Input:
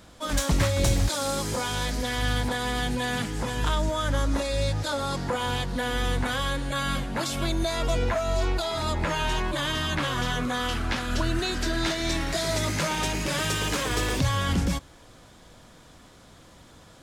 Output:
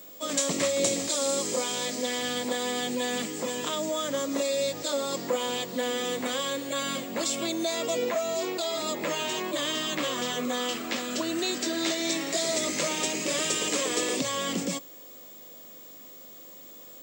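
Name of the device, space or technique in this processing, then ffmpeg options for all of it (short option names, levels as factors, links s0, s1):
old television with a line whistle: -af "highpass=f=220:w=0.5412,highpass=f=220:w=1.3066,equalizer=f=520:t=q:w=4:g=4,equalizer=f=880:t=q:w=4:g=-8,equalizer=f=1500:t=q:w=4:g=-10,equalizer=f=7500:t=q:w=4:g=10,lowpass=f=8600:w=0.5412,lowpass=f=8600:w=1.3066,aeval=exprs='val(0)+0.00562*sin(2*PI*15625*n/s)':c=same"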